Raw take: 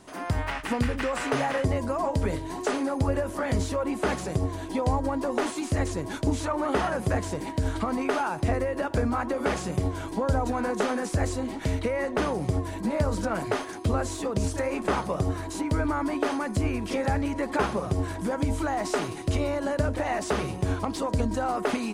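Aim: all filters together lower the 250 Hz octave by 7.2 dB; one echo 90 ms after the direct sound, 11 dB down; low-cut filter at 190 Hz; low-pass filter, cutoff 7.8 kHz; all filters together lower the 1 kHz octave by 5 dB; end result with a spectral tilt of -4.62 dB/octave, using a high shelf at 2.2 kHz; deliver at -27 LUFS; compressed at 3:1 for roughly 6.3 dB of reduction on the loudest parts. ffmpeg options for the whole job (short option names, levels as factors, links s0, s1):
-af "highpass=190,lowpass=7800,equalizer=f=250:t=o:g=-7,equalizer=f=1000:t=o:g=-5,highshelf=f=2200:g=-6,acompressor=threshold=0.02:ratio=3,aecho=1:1:90:0.282,volume=3.35"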